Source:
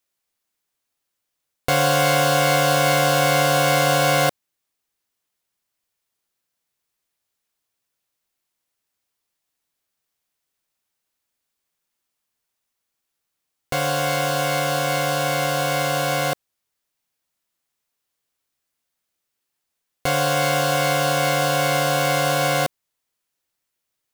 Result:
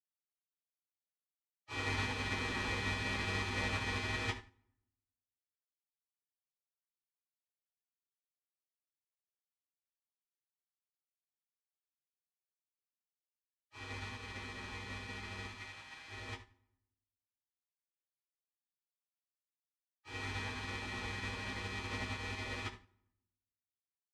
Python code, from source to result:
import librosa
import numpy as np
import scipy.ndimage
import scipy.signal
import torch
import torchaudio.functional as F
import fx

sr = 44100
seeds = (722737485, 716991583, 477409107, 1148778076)

y = fx.spec_gate(x, sr, threshold_db=-25, keep='weak')
y = fx.highpass(y, sr, hz=850.0, slope=12, at=(15.48, 16.08))
y = 10.0 ** (-22.5 / 20.0) * np.tanh(y / 10.0 ** (-22.5 / 20.0))
y = fx.spacing_loss(y, sr, db_at_10k=40)
y = fx.rev_fdn(y, sr, rt60_s=0.85, lf_ratio=1.45, hf_ratio=0.75, size_ms=56.0, drr_db=-9.5)
y = fx.upward_expand(y, sr, threshold_db=-55.0, expansion=2.5)
y = y * 10.0 ** (7.5 / 20.0)